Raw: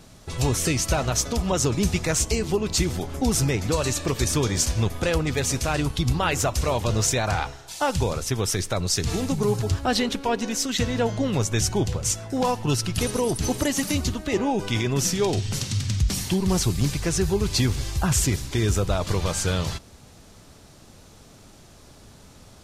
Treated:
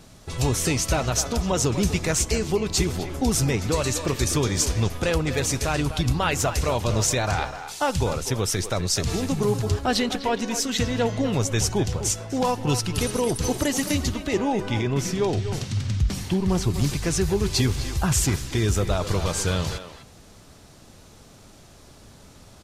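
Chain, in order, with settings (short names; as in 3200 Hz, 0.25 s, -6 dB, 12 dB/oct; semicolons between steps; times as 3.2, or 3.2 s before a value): 14.6–16.74 high shelf 3600 Hz -10 dB; speakerphone echo 0.25 s, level -9 dB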